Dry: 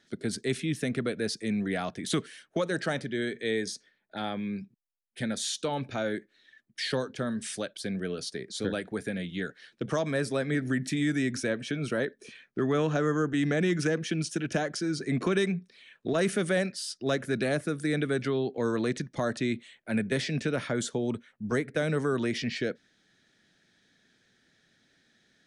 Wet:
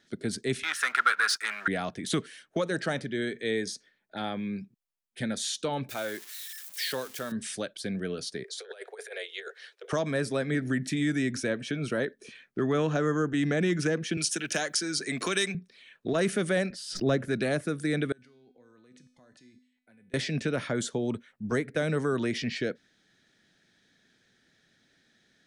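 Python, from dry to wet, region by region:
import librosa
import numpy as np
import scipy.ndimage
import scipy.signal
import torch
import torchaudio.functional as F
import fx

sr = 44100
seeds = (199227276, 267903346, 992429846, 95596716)

y = fx.chain(x, sr, fx.leveller(passes=2),
    fx.highpass_res(hz=1400.0, q=10.0), at=(0.63, 1.68))
y = fx.chain(y, sr, fx.crossing_spikes(level_db=-32.0),
    fx.peak_eq(hz=150.0, db=-11.5, octaves=2.5), at=(5.89, 7.32))
y = fx.chain(y, sr, fx.steep_highpass(hz=390.0, slope=96),
    fx.over_compress(threshold_db=-39.0, ratio=-0.5), at=(8.44, 9.93))
y = fx.chain(y, sr, fx.tilt_eq(slope=3.5),
    fx.band_squash(depth_pct=40), at=(14.17, 15.55))
y = fx.chain(y, sr, fx.tilt_eq(slope=-2.0),
    fx.pre_swell(db_per_s=84.0), at=(16.7, 17.28))
y = fx.chain(y, sr, fx.level_steps(step_db=23),
    fx.comb_fb(f0_hz=250.0, decay_s=0.65, harmonics='all', damping=0.0, mix_pct=80), at=(18.12, 20.14))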